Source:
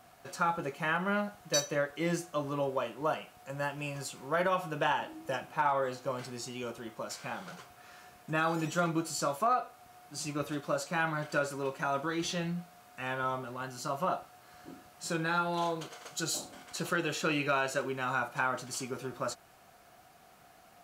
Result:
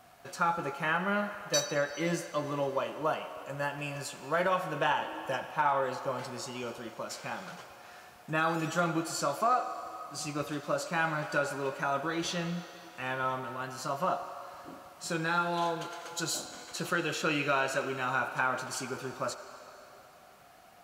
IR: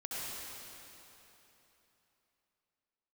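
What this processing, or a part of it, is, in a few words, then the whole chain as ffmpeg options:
filtered reverb send: -filter_complex "[0:a]asplit=2[a][b];[b]highpass=440,lowpass=6.5k[c];[1:a]atrim=start_sample=2205[d];[c][d]afir=irnorm=-1:irlink=0,volume=-10dB[e];[a][e]amix=inputs=2:normalize=0"

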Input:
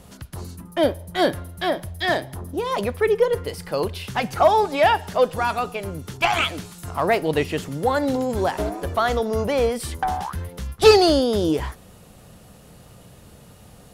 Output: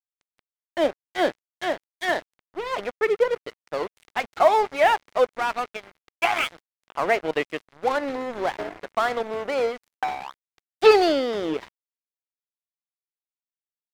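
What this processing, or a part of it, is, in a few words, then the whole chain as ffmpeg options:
pocket radio on a weak battery: -af "highpass=330,lowpass=3.1k,aeval=exprs='sgn(val(0))*max(abs(val(0))-0.0282,0)':c=same,equalizer=f=2.1k:t=o:w=0.27:g=4"

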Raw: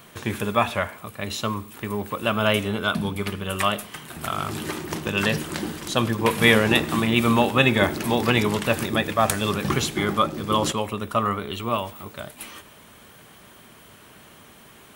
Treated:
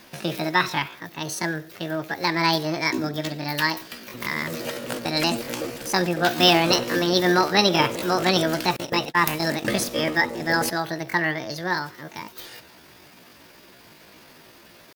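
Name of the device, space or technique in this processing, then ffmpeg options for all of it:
chipmunk voice: -filter_complex "[0:a]asettb=1/sr,asplit=3[a][b][c];[a]atrim=end=8.784[d];[b]atrim=start=8.78:end=9.77,asetpts=PTS-STARTPTS,afade=t=in:d=0.004:c=qsin,afade=t=out:st=0.986:d=0.004:c=qsin,agate=range=-31dB:threshold=-25dB:ratio=16:detection=peak[e];[c]atrim=start=9.766[f];[d][e]acrossfade=d=0.004:c1=hsin:c2=qsin[g];[g][f]acrossfade=d=0.004:c1=qsin:c2=hsin,asetrate=68011,aresample=44100,atempo=0.64842"

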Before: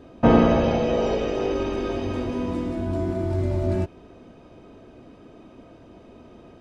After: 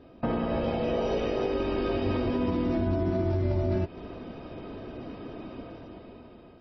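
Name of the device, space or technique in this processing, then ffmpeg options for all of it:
low-bitrate web radio: -af "dynaudnorm=f=370:g=7:m=16dB,alimiter=limit=-13.5dB:level=0:latency=1:release=175,volume=-5dB" -ar 22050 -c:a libmp3lame -b:a 24k

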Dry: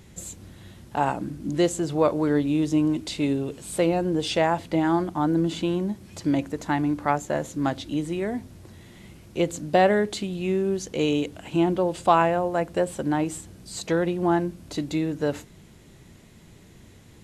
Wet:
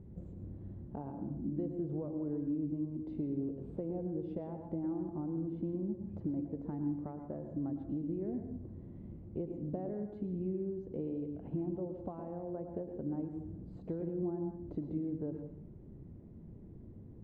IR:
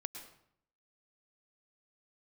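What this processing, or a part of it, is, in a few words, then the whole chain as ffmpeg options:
television next door: -filter_complex "[0:a]acompressor=threshold=-33dB:ratio=6,lowpass=390[a];[1:a]atrim=start_sample=2205[b];[a][b]afir=irnorm=-1:irlink=0,volume=2dB"

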